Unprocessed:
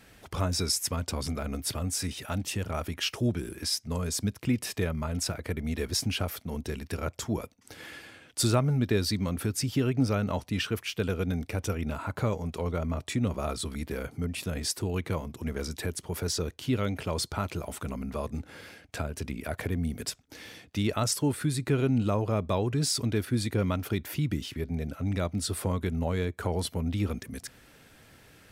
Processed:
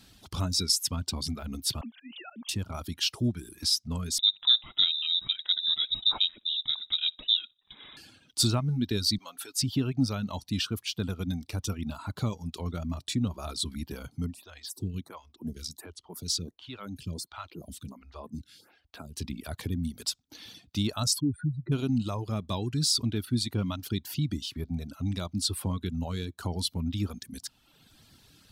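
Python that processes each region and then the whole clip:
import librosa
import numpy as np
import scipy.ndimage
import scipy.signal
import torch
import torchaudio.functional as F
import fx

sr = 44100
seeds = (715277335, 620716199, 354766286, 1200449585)

y = fx.chain(x, sr, fx.sine_speech(),
    fx.highpass(hz=420.0, slope=12),
    fx.auto_swell(attack_ms=148.0), at=(1.81, 2.49))
y = fx.chain(y, sr, fx.halfwave_gain(db=-3.0),
    fx.echo_feedback(ms=60, feedback_pct=17, wet_db=-19.0),
    fx.freq_invert(carrier_hz=3800), at=(4.18, 7.97))
y = fx.chain(y, sr, fx.highpass(hz=640.0, slope=12),
    fx.comb(ms=7.2, depth=0.48), at=(9.18, 9.62))
y = fx.chain(y, sr, fx.harmonic_tremolo(hz=1.8, depth_pct=50, crossover_hz=980.0),
    fx.stagger_phaser(hz=1.4), at=(14.34, 19.16))
y = fx.chain(y, sr, fx.spec_expand(power=2.7),
    fx.lowpass(hz=2300.0, slope=6), at=(21.2, 21.72))
y = fx.dereverb_blind(y, sr, rt60_s=0.96)
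y = fx.graphic_eq(y, sr, hz=(250, 500, 2000, 4000), db=(3, -10, -10, 9))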